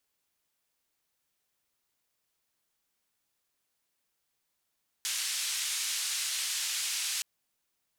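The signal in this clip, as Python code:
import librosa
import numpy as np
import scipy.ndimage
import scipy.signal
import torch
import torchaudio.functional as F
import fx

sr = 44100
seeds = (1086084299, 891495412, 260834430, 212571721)

y = fx.band_noise(sr, seeds[0], length_s=2.17, low_hz=2300.0, high_hz=8700.0, level_db=-33.0)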